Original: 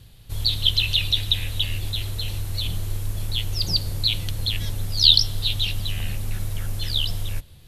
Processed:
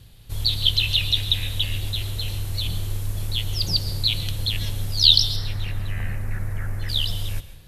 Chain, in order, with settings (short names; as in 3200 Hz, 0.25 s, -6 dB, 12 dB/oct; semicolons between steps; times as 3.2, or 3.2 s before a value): 5.36–6.89 resonant high shelf 2500 Hz -10 dB, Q 3; plate-style reverb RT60 0.73 s, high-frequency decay 0.85×, pre-delay 0.105 s, DRR 12.5 dB